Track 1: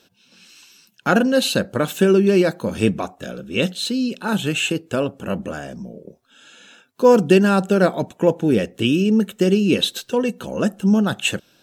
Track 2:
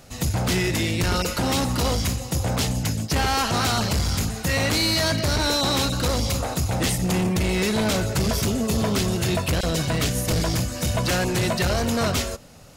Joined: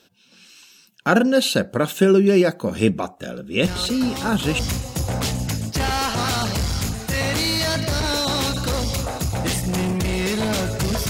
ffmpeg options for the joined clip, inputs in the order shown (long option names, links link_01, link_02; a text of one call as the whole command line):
ffmpeg -i cue0.wav -i cue1.wav -filter_complex "[1:a]asplit=2[link_01][link_02];[0:a]apad=whole_dur=11.09,atrim=end=11.09,atrim=end=4.592[link_03];[link_02]atrim=start=1.948:end=8.45[link_04];[link_01]atrim=start=0.99:end=1.95,asetpts=PTS-STARTPTS,volume=-6.5dB,afade=type=in:duration=0.004:curve=hsin,afade=type=out:start_time=0.956:duration=0.004:curve=hsin,adelay=3630[link_05];[link_03][link_04]acrossfade=duration=0.004:curve1=hsin:curve2=hsin[link_06];[link_06][link_05]amix=inputs=2:normalize=0" out.wav